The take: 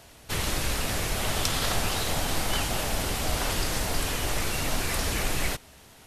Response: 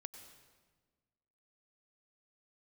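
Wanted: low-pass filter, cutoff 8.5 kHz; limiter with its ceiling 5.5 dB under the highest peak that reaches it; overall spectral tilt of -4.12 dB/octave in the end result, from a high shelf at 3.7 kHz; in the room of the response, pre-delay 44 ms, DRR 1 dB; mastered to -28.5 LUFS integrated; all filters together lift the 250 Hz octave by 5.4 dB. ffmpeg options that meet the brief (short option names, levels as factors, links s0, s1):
-filter_complex "[0:a]lowpass=8500,equalizer=f=250:t=o:g=7,highshelf=f=3700:g=-4,alimiter=limit=0.119:level=0:latency=1,asplit=2[s0][s1];[1:a]atrim=start_sample=2205,adelay=44[s2];[s1][s2]afir=irnorm=-1:irlink=0,volume=1.58[s3];[s0][s3]amix=inputs=2:normalize=0,volume=0.891"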